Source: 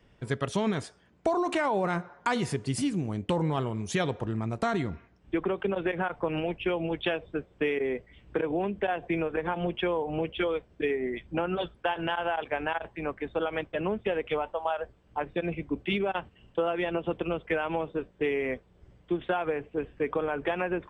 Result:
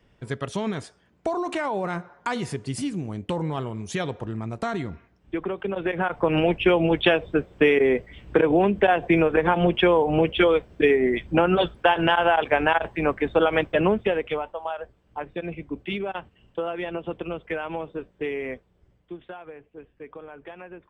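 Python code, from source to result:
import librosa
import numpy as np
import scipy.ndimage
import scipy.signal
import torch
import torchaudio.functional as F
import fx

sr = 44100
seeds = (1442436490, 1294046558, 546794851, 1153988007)

y = fx.gain(x, sr, db=fx.line((5.64, 0.0), (6.43, 10.0), (13.83, 10.0), (14.54, -1.0), (18.48, -1.0), (19.4, -12.0)))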